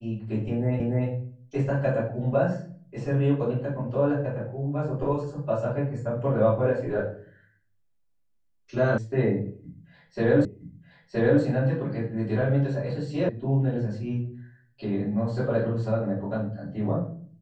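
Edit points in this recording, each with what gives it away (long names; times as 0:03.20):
0:00.80: the same again, the last 0.29 s
0:08.98: cut off before it has died away
0:10.45: the same again, the last 0.97 s
0:13.29: cut off before it has died away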